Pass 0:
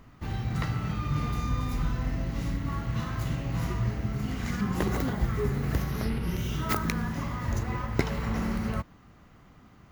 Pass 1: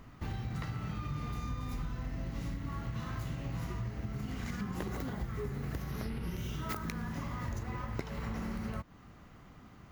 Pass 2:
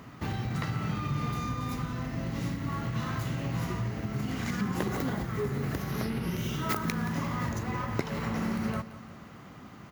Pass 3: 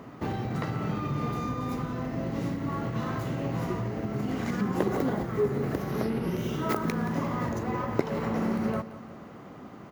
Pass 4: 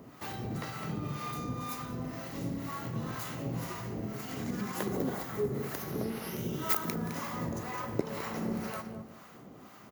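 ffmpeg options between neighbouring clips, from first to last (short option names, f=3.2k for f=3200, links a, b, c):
-af "acompressor=threshold=-35dB:ratio=5"
-af "highpass=110,aecho=1:1:175|350|525|700|875:0.168|0.089|0.0472|0.025|0.0132,volume=8dB"
-af "equalizer=f=460:w=0.47:g=12,volume=-4.5dB"
-filter_complex "[0:a]crystalizer=i=3.5:c=0,asplit=2[a][b];[b]adelay=209.9,volume=-8dB,highshelf=f=4k:g=-4.72[c];[a][c]amix=inputs=2:normalize=0,acrossover=split=680[d][e];[d]aeval=exprs='val(0)*(1-0.7/2+0.7/2*cos(2*PI*2*n/s))':c=same[f];[e]aeval=exprs='val(0)*(1-0.7/2-0.7/2*cos(2*PI*2*n/s))':c=same[g];[f][g]amix=inputs=2:normalize=0,volume=-4.5dB"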